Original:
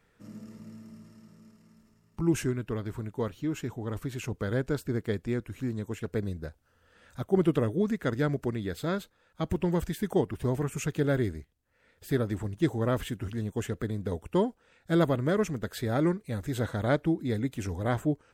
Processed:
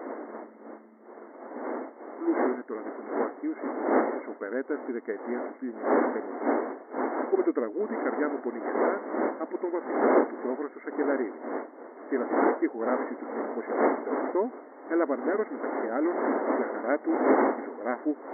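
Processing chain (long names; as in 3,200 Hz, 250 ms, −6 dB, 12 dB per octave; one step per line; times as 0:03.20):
wind on the microphone 580 Hz −29 dBFS
linear-phase brick-wall band-pass 230–2,200 Hz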